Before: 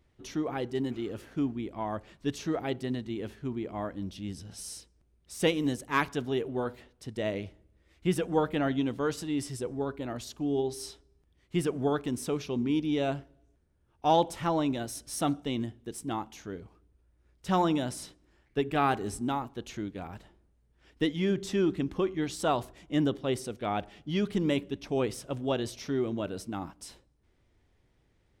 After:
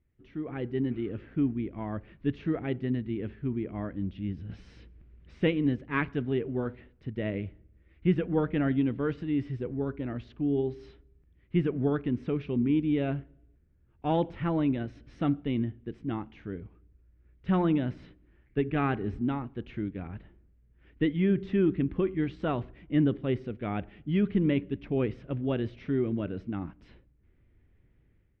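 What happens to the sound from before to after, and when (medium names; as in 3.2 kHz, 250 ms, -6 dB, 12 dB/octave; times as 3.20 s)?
4.49–5.40 s: companding laws mixed up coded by mu
whole clip: low-pass 2.3 kHz 24 dB/octave; peaking EQ 850 Hz -13.5 dB 1.9 oct; level rider gain up to 11 dB; trim -5 dB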